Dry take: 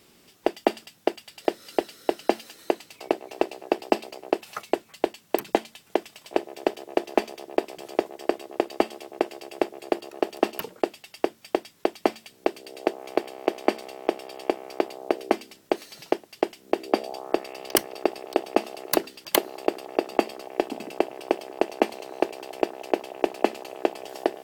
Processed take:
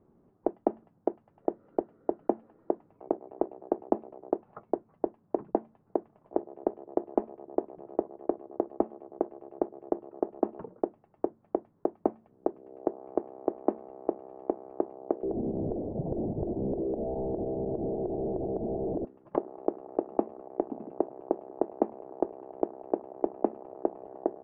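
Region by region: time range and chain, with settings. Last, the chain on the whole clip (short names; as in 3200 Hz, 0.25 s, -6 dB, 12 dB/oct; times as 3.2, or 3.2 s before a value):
15.23–19.05 delta modulation 64 kbps, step -15 dBFS + steep low-pass 730 Hz 48 dB/oct + compressor 5:1, threshold -24 dBFS
whole clip: LPF 1100 Hz 24 dB/oct; low shelf 370 Hz +8.5 dB; gain -8.5 dB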